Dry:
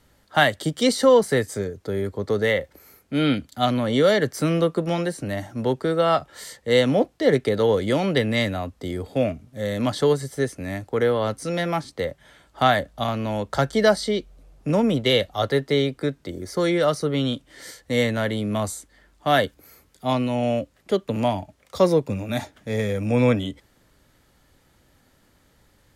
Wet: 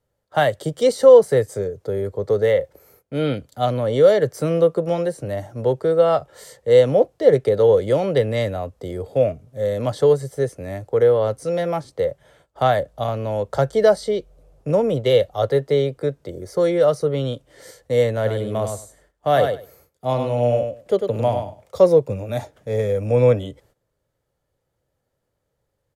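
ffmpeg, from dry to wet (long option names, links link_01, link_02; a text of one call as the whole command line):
ffmpeg -i in.wav -filter_complex "[0:a]asplit=3[link_01][link_02][link_03];[link_01]afade=type=out:start_time=18.24:duration=0.02[link_04];[link_02]aecho=1:1:99|198|297:0.501|0.0752|0.0113,afade=type=in:start_time=18.24:duration=0.02,afade=type=out:start_time=21.82:duration=0.02[link_05];[link_03]afade=type=in:start_time=21.82:duration=0.02[link_06];[link_04][link_05][link_06]amix=inputs=3:normalize=0,deesser=0.4,agate=range=-15dB:threshold=-53dB:ratio=16:detection=peak,equalizer=frequency=125:width_type=o:width=1:gain=7,equalizer=frequency=250:width_type=o:width=1:gain=-7,equalizer=frequency=500:width_type=o:width=1:gain=11,equalizer=frequency=2000:width_type=o:width=1:gain=-3,equalizer=frequency=4000:width_type=o:width=1:gain=-3,volume=-3dB" out.wav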